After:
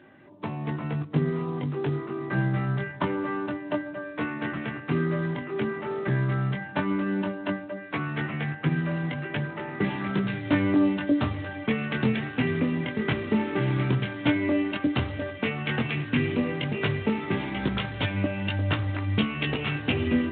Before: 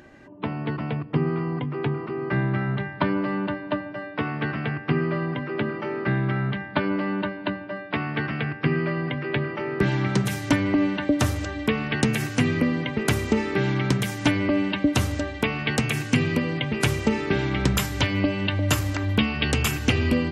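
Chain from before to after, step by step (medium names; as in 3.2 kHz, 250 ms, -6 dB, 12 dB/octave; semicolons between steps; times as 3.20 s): chorus 0.11 Hz, delay 19 ms, depth 4.7 ms; Speex 18 kbps 8 kHz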